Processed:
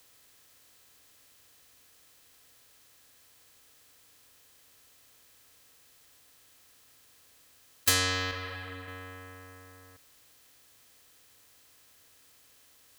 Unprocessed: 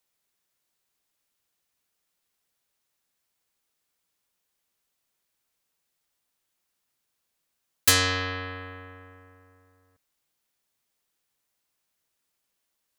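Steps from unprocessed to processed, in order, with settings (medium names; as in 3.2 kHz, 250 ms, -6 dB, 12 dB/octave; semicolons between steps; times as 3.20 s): spectral levelling over time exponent 0.6; 8.31–8.88 s: three-phase chorus; trim -6 dB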